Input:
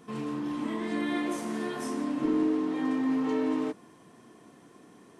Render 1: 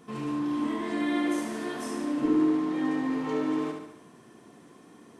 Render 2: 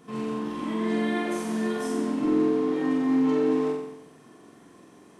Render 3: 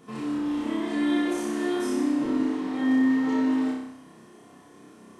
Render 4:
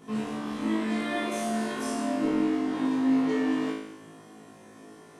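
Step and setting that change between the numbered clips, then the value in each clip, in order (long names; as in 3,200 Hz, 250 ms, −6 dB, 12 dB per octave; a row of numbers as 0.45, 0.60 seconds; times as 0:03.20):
flutter between parallel walls, walls apart: 12.2, 7.8, 5.3, 3.2 metres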